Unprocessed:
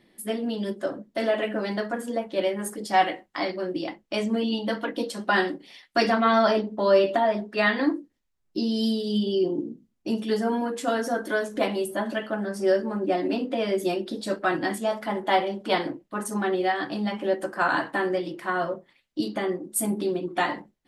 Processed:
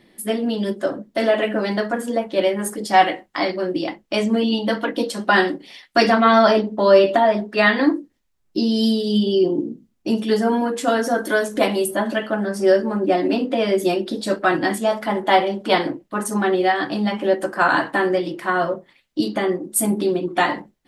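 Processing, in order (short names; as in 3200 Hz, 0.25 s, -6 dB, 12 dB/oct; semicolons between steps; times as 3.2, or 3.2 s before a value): 11.18–11.91 high shelf 7300 Hz +7.5 dB; gain +6.5 dB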